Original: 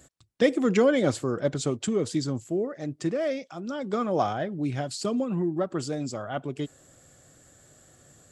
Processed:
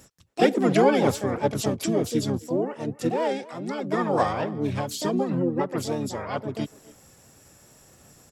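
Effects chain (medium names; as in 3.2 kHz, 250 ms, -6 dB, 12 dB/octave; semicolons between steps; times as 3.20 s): speakerphone echo 270 ms, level -19 dB; harmony voices -5 st -5 dB, +7 st -4 dB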